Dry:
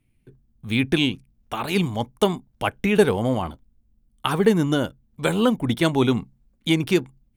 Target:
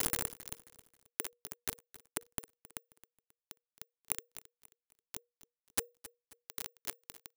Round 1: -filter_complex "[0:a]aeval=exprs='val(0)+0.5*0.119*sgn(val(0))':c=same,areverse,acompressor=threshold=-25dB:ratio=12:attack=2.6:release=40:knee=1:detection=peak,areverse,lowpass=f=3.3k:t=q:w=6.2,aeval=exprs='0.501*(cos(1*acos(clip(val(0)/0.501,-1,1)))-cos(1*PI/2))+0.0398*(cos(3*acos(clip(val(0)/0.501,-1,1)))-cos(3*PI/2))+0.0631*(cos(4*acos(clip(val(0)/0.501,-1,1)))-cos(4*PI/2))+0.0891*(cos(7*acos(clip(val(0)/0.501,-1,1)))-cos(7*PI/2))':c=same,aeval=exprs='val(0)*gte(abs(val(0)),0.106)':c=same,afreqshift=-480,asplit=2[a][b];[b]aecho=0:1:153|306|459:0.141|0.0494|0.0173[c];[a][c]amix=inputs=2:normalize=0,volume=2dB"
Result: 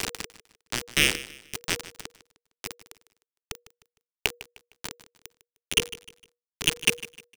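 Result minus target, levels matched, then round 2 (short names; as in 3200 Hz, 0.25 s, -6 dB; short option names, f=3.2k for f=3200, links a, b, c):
echo 0.115 s early; 8000 Hz band -6.5 dB
-filter_complex "[0:a]aeval=exprs='val(0)+0.5*0.119*sgn(val(0))':c=same,areverse,acompressor=threshold=-25dB:ratio=12:attack=2.6:release=40:knee=1:detection=peak,areverse,lowpass=f=11k:t=q:w=6.2,aeval=exprs='0.501*(cos(1*acos(clip(val(0)/0.501,-1,1)))-cos(1*PI/2))+0.0398*(cos(3*acos(clip(val(0)/0.501,-1,1)))-cos(3*PI/2))+0.0631*(cos(4*acos(clip(val(0)/0.501,-1,1)))-cos(4*PI/2))+0.0891*(cos(7*acos(clip(val(0)/0.501,-1,1)))-cos(7*PI/2))':c=same,aeval=exprs='val(0)*gte(abs(val(0)),0.106)':c=same,afreqshift=-480,asplit=2[a][b];[b]aecho=0:1:268|536|804:0.141|0.0494|0.0173[c];[a][c]amix=inputs=2:normalize=0,volume=2dB"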